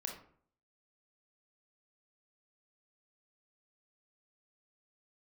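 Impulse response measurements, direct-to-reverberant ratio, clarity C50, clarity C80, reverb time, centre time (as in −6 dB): 1.5 dB, 6.0 dB, 10.5 dB, 0.55 s, 26 ms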